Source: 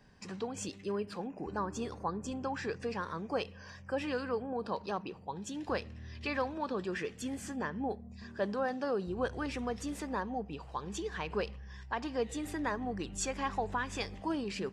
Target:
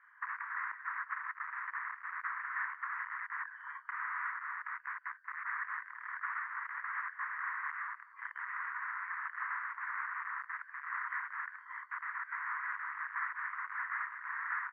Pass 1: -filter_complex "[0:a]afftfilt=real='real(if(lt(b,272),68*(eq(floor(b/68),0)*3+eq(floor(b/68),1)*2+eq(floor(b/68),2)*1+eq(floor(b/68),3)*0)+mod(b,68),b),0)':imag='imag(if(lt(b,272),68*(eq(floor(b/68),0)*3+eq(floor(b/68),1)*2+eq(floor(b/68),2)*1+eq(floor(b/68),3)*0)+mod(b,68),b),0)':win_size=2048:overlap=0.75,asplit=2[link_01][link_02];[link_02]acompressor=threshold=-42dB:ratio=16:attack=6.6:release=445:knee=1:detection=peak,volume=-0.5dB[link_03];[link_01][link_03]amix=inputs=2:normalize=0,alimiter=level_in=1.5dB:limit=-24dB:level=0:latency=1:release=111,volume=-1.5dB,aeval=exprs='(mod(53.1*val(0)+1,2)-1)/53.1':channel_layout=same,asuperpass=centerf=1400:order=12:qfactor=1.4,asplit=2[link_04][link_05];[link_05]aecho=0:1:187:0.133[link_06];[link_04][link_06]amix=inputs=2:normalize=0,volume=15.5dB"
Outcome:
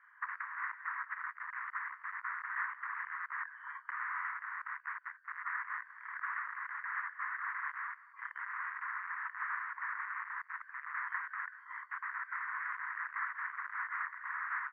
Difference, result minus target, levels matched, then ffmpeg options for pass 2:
downward compressor: peak gain reduction +7.5 dB
-filter_complex "[0:a]afftfilt=real='real(if(lt(b,272),68*(eq(floor(b/68),0)*3+eq(floor(b/68),1)*2+eq(floor(b/68),2)*1+eq(floor(b/68),3)*0)+mod(b,68),b),0)':imag='imag(if(lt(b,272),68*(eq(floor(b/68),0)*3+eq(floor(b/68),1)*2+eq(floor(b/68),2)*1+eq(floor(b/68),3)*0)+mod(b,68),b),0)':win_size=2048:overlap=0.75,asplit=2[link_01][link_02];[link_02]acompressor=threshold=-34dB:ratio=16:attack=6.6:release=445:knee=1:detection=peak,volume=-0.5dB[link_03];[link_01][link_03]amix=inputs=2:normalize=0,alimiter=level_in=1.5dB:limit=-24dB:level=0:latency=1:release=111,volume=-1.5dB,aeval=exprs='(mod(53.1*val(0)+1,2)-1)/53.1':channel_layout=same,asuperpass=centerf=1400:order=12:qfactor=1.4,asplit=2[link_04][link_05];[link_05]aecho=0:1:187:0.133[link_06];[link_04][link_06]amix=inputs=2:normalize=0,volume=15.5dB"

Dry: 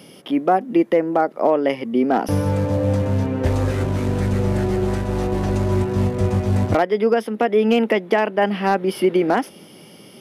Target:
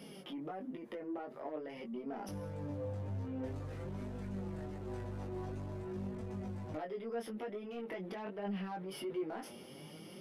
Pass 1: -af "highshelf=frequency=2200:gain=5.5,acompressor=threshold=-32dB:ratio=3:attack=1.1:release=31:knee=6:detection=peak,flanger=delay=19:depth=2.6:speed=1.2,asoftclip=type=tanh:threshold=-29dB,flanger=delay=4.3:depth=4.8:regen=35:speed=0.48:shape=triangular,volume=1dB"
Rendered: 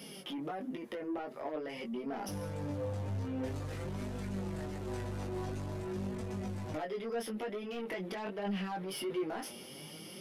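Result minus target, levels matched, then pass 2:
4,000 Hz band +4.0 dB; downward compressor: peak gain reduction −4 dB
-af "highshelf=frequency=2200:gain=-4,acompressor=threshold=-39dB:ratio=3:attack=1.1:release=31:knee=6:detection=peak,flanger=delay=19:depth=2.6:speed=1.2,asoftclip=type=tanh:threshold=-29dB,flanger=delay=4.3:depth=4.8:regen=35:speed=0.48:shape=triangular,volume=1dB"

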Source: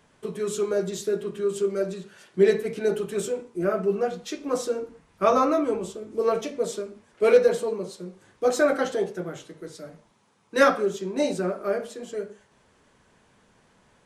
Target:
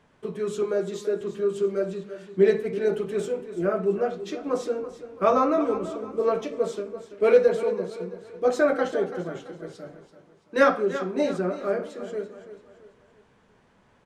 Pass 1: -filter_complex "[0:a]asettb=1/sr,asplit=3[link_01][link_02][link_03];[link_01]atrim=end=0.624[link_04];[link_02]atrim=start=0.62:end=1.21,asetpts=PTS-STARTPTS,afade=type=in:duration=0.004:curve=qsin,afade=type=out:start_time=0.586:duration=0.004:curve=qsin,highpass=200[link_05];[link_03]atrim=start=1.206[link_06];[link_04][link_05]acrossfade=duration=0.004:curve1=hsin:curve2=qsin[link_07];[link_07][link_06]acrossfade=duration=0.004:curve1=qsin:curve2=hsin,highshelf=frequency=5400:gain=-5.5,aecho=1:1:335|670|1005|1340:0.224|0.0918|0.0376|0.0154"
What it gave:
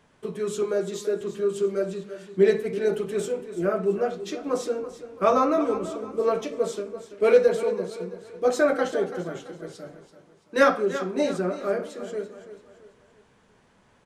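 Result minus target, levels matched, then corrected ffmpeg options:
8,000 Hz band +5.0 dB
-filter_complex "[0:a]asettb=1/sr,asplit=3[link_01][link_02][link_03];[link_01]atrim=end=0.624[link_04];[link_02]atrim=start=0.62:end=1.21,asetpts=PTS-STARTPTS,afade=type=in:duration=0.004:curve=qsin,afade=type=out:start_time=0.586:duration=0.004:curve=qsin,highpass=200[link_05];[link_03]atrim=start=1.206[link_06];[link_04][link_05]acrossfade=duration=0.004:curve1=hsin:curve2=qsin[link_07];[link_07][link_06]acrossfade=duration=0.004:curve1=qsin:curve2=hsin,highshelf=frequency=5400:gain=-14,aecho=1:1:335|670|1005|1340:0.224|0.0918|0.0376|0.0154"

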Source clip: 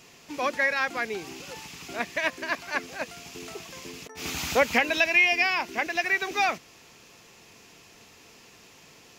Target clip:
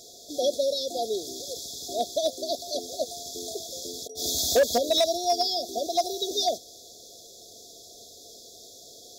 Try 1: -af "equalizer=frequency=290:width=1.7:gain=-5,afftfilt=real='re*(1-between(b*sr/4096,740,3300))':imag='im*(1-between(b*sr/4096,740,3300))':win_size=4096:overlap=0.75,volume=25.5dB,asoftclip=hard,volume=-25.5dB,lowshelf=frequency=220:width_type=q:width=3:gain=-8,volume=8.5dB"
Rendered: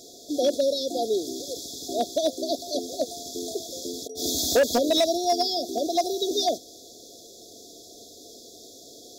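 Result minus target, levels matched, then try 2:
250 Hz band +7.0 dB
-af "equalizer=frequency=290:width=1.7:gain=-16,afftfilt=real='re*(1-between(b*sr/4096,740,3300))':imag='im*(1-between(b*sr/4096,740,3300))':win_size=4096:overlap=0.75,volume=25.5dB,asoftclip=hard,volume=-25.5dB,lowshelf=frequency=220:width_type=q:width=3:gain=-8,volume=8.5dB"

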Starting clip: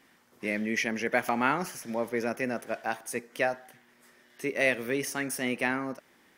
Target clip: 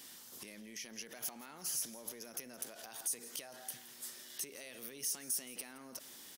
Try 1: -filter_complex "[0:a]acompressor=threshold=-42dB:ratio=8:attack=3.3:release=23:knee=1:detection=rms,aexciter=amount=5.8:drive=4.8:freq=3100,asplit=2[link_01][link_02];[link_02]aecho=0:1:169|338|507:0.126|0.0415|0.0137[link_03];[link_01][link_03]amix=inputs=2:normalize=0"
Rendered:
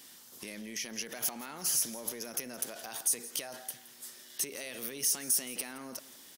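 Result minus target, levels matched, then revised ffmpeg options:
downward compressor: peak gain reduction −8.5 dB
-filter_complex "[0:a]acompressor=threshold=-51.5dB:ratio=8:attack=3.3:release=23:knee=1:detection=rms,aexciter=amount=5.8:drive=4.8:freq=3100,asplit=2[link_01][link_02];[link_02]aecho=0:1:169|338|507:0.126|0.0415|0.0137[link_03];[link_01][link_03]amix=inputs=2:normalize=0"

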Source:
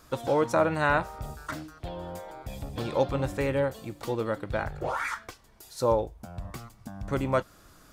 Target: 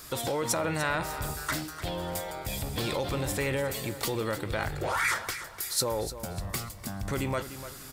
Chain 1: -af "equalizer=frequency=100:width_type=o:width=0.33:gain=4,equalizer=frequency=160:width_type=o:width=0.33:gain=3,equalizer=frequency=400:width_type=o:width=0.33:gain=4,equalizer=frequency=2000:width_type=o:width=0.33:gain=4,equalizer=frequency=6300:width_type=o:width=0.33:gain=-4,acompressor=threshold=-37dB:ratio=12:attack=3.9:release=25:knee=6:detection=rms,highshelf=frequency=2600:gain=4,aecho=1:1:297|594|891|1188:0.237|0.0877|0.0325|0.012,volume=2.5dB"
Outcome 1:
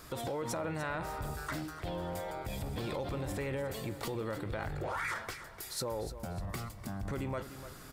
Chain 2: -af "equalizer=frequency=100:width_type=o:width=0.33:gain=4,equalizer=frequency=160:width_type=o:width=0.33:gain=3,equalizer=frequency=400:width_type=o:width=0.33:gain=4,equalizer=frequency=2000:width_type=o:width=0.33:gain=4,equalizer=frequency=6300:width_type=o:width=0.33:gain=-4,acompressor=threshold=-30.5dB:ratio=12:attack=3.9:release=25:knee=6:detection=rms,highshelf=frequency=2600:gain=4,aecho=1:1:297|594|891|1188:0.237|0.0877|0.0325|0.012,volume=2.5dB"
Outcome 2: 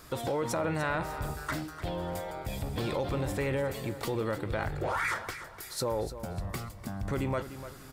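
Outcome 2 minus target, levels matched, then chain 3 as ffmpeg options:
4,000 Hz band −5.0 dB
-af "equalizer=frequency=100:width_type=o:width=0.33:gain=4,equalizer=frequency=160:width_type=o:width=0.33:gain=3,equalizer=frequency=400:width_type=o:width=0.33:gain=4,equalizer=frequency=2000:width_type=o:width=0.33:gain=4,equalizer=frequency=6300:width_type=o:width=0.33:gain=-4,acompressor=threshold=-30.5dB:ratio=12:attack=3.9:release=25:knee=6:detection=rms,highshelf=frequency=2600:gain=15,aecho=1:1:297|594|891|1188:0.237|0.0877|0.0325|0.012,volume=2.5dB"

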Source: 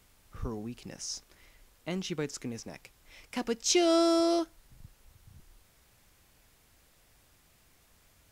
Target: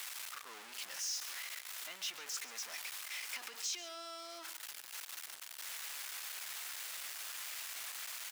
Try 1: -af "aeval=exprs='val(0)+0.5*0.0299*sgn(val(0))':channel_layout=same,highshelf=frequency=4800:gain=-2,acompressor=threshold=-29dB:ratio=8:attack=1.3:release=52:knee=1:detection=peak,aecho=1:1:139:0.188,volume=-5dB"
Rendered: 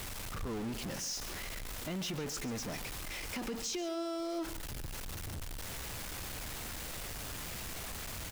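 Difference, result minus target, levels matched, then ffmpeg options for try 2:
1,000 Hz band +3.5 dB
-af "aeval=exprs='val(0)+0.5*0.0299*sgn(val(0))':channel_layout=same,highshelf=frequency=4800:gain=-2,acompressor=threshold=-29dB:ratio=8:attack=1.3:release=52:knee=1:detection=peak,highpass=1300,aecho=1:1:139:0.188,volume=-5dB"

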